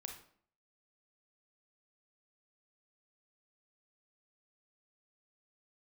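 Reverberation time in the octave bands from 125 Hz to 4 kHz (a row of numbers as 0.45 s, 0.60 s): 0.55 s, 0.65 s, 0.60 s, 0.55 s, 0.45 s, 0.40 s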